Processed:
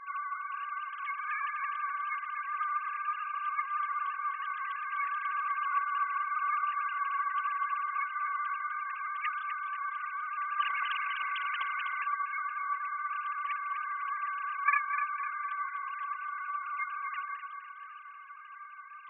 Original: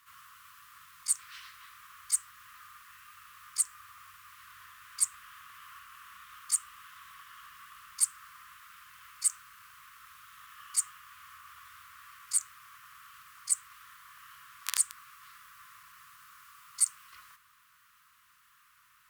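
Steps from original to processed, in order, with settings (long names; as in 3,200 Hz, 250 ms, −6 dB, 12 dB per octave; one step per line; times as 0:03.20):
three sine waves on the formant tracks
feedback echo with a high-pass in the loop 251 ms, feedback 48%, level −8 dB
0:10.62–0:12.04: every bin compressed towards the loudest bin 2 to 1
level +4.5 dB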